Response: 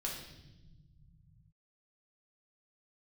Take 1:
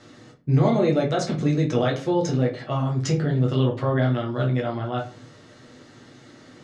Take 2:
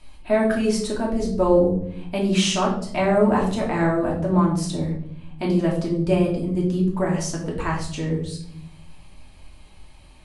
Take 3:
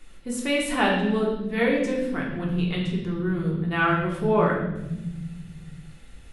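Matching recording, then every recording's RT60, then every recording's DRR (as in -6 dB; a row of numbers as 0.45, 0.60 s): 3; 0.40 s, 0.70 s, not exponential; -2.0, -3.5, -2.5 dB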